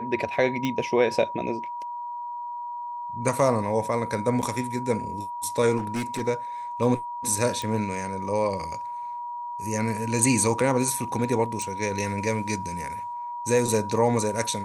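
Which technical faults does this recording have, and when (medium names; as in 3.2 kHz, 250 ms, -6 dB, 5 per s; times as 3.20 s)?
whine 960 Hz -31 dBFS
0.65 s: pop -14 dBFS
4.42–4.43 s: dropout 8 ms
5.77–6.22 s: clipped -24 dBFS
7.62 s: pop
11.62 s: pop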